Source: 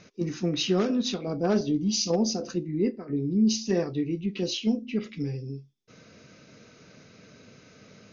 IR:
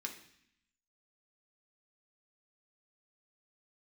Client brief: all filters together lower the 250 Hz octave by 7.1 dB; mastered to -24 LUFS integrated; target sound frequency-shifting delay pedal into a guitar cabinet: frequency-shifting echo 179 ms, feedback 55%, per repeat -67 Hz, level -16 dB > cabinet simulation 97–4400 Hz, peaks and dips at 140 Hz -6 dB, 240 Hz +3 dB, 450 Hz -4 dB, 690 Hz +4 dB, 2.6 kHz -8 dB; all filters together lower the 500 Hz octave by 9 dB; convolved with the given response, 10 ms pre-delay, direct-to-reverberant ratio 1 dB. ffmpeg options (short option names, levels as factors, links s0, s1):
-filter_complex "[0:a]equalizer=f=250:t=o:g=-8,equalizer=f=500:t=o:g=-7.5,asplit=2[s0][s1];[1:a]atrim=start_sample=2205,adelay=10[s2];[s1][s2]afir=irnorm=-1:irlink=0,volume=1[s3];[s0][s3]amix=inputs=2:normalize=0,asplit=6[s4][s5][s6][s7][s8][s9];[s5]adelay=179,afreqshift=-67,volume=0.158[s10];[s6]adelay=358,afreqshift=-134,volume=0.0871[s11];[s7]adelay=537,afreqshift=-201,volume=0.0479[s12];[s8]adelay=716,afreqshift=-268,volume=0.0263[s13];[s9]adelay=895,afreqshift=-335,volume=0.0145[s14];[s4][s10][s11][s12][s13][s14]amix=inputs=6:normalize=0,highpass=97,equalizer=f=140:t=q:w=4:g=-6,equalizer=f=240:t=q:w=4:g=3,equalizer=f=450:t=q:w=4:g=-4,equalizer=f=690:t=q:w=4:g=4,equalizer=f=2600:t=q:w=4:g=-8,lowpass=f=4400:w=0.5412,lowpass=f=4400:w=1.3066,volume=2.11"